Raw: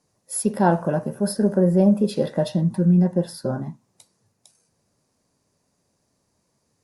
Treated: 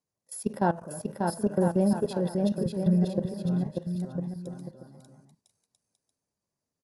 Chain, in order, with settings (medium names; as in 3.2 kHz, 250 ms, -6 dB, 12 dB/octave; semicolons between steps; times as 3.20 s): level held to a coarse grid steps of 17 dB; bouncing-ball echo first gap 590 ms, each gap 0.7×, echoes 5; trim -5 dB